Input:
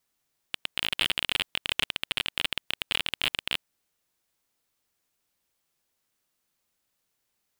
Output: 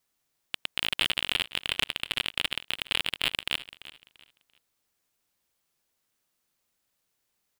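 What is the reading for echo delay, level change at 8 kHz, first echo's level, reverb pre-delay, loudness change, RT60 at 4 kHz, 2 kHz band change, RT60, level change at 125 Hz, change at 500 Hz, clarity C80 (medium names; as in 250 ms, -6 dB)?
341 ms, 0.0 dB, -16.0 dB, no reverb, 0.0 dB, no reverb, 0.0 dB, no reverb, 0.0 dB, 0.0 dB, no reverb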